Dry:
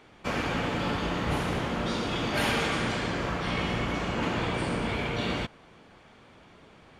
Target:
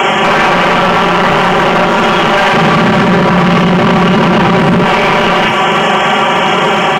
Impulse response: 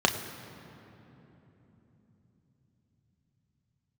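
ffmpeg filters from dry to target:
-filter_complex "[0:a]aecho=1:1:5.2:0.65[s0];[1:a]atrim=start_sample=2205,atrim=end_sample=3528[s1];[s0][s1]afir=irnorm=-1:irlink=0,acompressor=threshold=0.0708:ratio=6,asuperstop=centerf=4100:order=12:qfactor=2.3,aeval=exprs='clip(val(0),-1,0.0237)':c=same,highshelf=f=8200:g=11,aecho=1:1:177:0.0668,acrossover=split=2700[s2][s3];[s3]acompressor=threshold=0.00251:ratio=4:attack=1:release=60[s4];[s2][s4]amix=inputs=2:normalize=0,asettb=1/sr,asplit=3[s5][s6][s7];[s5]atrim=end=2.534[s8];[s6]atrim=start=2.53:end=4.84,asetpts=PTS-STARTPTS,afade=t=in:d=0.004:c=qsin,afade=t=out:st=2.306:d=0.004:c=qsin,equalizer=f=150:t=o:w=2.4:g=12.5[s9];[s7]atrim=start=4.836[s10];[s8][s9]acrossfade=d=0.004:c1=hsin:c2=qsin[s11];[s11][s10]acrossfade=d=0.004:c1=qsin:c2=hsin,asplit=2[s12][s13];[s13]highpass=f=720:p=1,volume=7.94,asoftclip=type=tanh:threshold=0.224[s14];[s12][s14]amix=inputs=2:normalize=0,lowpass=f=7200:p=1,volume=0.501,alimiter=level_in=18.8:limit=0.891:release=50:level=0:latency=1,volume=0.891"

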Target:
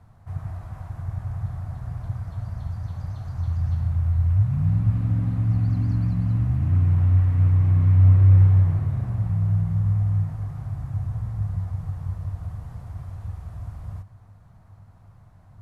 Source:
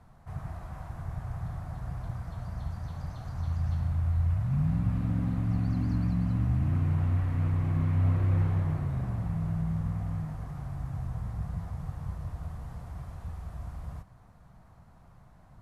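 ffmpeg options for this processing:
-af "equalizer=f=100:w=3.7:g=14.5"

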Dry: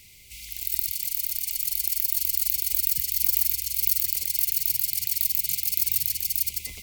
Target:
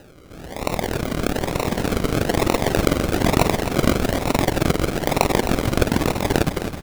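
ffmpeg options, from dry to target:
-af "acrusher=samples=39:mix=1:aa=0.000001:lfo=1:lforange=23.4:lforate=1.1,aecho=1:1:262|524|786|1048|1310:0.316|0.152|0.0729|0.035|0.0168,volume=1.78"

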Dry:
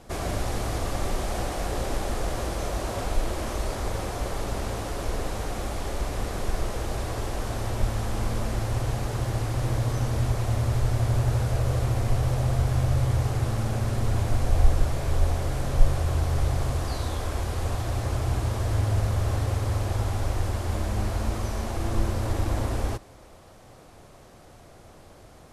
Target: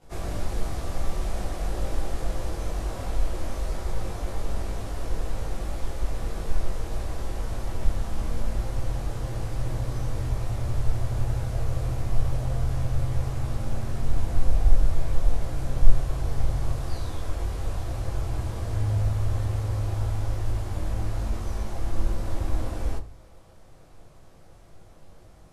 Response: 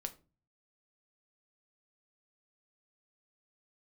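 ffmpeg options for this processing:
-filter_complex "[0:a]asplit=2[s0][s1];[1:a]atrim=start_sample=2205,lowshelf=f=110:g=9.5,adelay=19[s2];[s1][s2]afir=irnorm=-1:irlink=0,volume=2.66[s3];[s0][s3]amix=inputs=2:normalize=0,volume=0.211"

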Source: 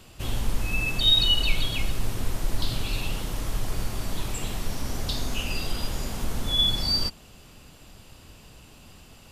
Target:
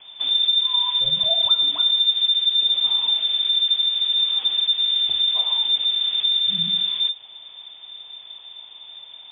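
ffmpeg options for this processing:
-af "lowshelf=f=150:g=11,acompressor=threshold=0.1:ratio=2.5,lowpass=f=3100:t=q:w=0.5098,lowpass=f=3100:t=q:w=0.6013,lowpass=f=3100:t=q:w=0.9,lowpass=f=3100:t=q:w=2.563,afreqshift=-3600"

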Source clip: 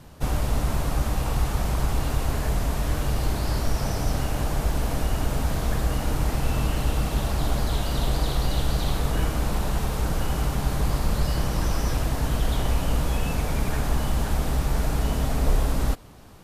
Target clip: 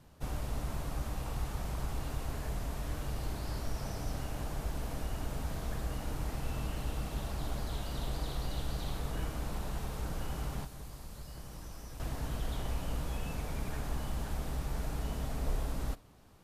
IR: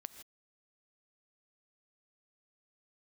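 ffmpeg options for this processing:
-filter_complex "[1:a]atrim=start_sample=2205,atrim=end_sample=3087[s0];[0:a][s0]afir=irnorm=-1:irlink=0,asettb=1/sr,asplit=3[s1][s2][s3];[s1]atrim=end=10.644[s4];[s2]atrim=start=10.64:end=12,asetpts=PTS-STARTPTS,afade=t=in:d=0.004:c=qsin,afade=t=out:st=1.356:d=0.004:c=qsin,acrossover=split=2500|5800[s5][s6][s7];[s5]acompressor=threshold=0.0141:ratio=4[s8];[s6]acompressor=threshold=0.00126:ratio=4[s9];[s7]acompressor=threshold=0.00316:ratio=4[s10];[s8][s9][s10]amix=inputs=3:normalize=0[s11];[s3]atrim=start=11.996[s12];[s4][s11]acrossfade=d=0.004:c1=hsin:c2=qsin[s13];[s13][s12]acrossfade=d=0.004:c1=qsin:c2=hsin,volume=0.447"

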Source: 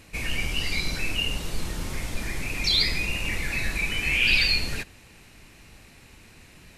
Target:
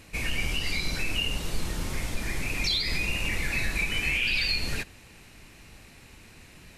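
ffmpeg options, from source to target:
-af "alimiter=limit=0.141:level=0:latency=1:release=133"

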